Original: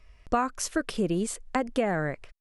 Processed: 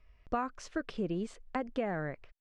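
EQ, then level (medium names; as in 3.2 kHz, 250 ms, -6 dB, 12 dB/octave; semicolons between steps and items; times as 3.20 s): distance through air 150 m; -7.0 dB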